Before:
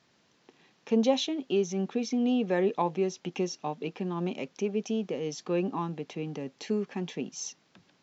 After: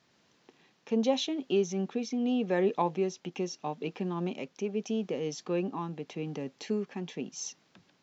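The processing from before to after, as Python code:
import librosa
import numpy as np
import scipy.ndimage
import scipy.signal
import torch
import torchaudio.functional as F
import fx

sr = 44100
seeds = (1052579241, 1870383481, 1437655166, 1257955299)

y = fx.tremolo_shape(x, sr, shape='triangle', hz=0.82, depth_pct=35)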